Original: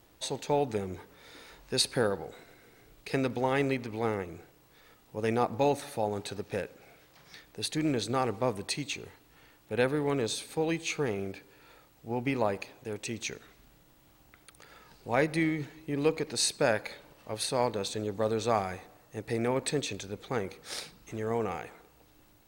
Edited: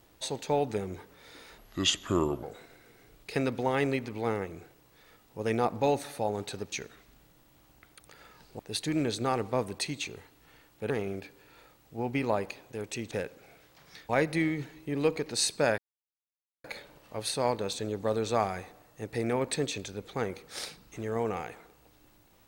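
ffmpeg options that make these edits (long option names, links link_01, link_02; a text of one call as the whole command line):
ffmpeg -i in.wav -filter_complex "[0:a]asplit=9[link_01][link_02][link_03][link_04][link_05][link_06][link_07][link_08][link_09];[link_01]atrim=end=1.584[link_10];[link_02]atrim=start=1.58:end=2.21,asetpts=PTS-STARTPTS,asetrate=32634,aresample=44100[link_11];[link_03]atrim=start=2.206:end=6.502[link_12];[link_04]atrim=start=13.228:end=15.102[link_13];[link_05]atrim=start=7.478:end=9.792[link_14];[link_06]atrim=start=11.018:end=13.232[link_15];[link_07]atrim=start=6.498:end=7.482[link_16];[link_08]atrim=start=15.098:end=16.79,asetpts=PTS-STARTPTS,afade=type=out:start_time=1.688:duration=0.004:curve=hsin,apad=pad_dur=0.86[link_17];[link_09]atrim=start=16.79,asetpts=PTS-STARTPTS,afade=type=in:duration=0.004:curve=hsin[link_18];[link_10][link_11]acrossfade=duration=0.004:curve1=hsin:curve2=hsin[link_19];[link_19][link_12]acrossfade=duration=0.004:curve1=hsin:curve2=hsin[link_20];[link_20][link_13]acrossfade=duration=0.004:curve1=hsin:curve2=hsin[link_21];[link_21][link_14]acrossfade=duration=0.004:curve1=hsin:curve2=hsin[link_22];[link_22][link_15]acrossfade=duration=0.004:curve1=hsin:curve2=hsin[link_23];[link_23][link_16]acrossfade=duration=0.004:curve1=hsin:curve2=hsin[link_24];[link_17][link_18]concat=n=2:v=0:a=1[link_25];[link_24][link_25]acrossfade=duration=0.004:curve1=hsin:curve2=hsin" out.wav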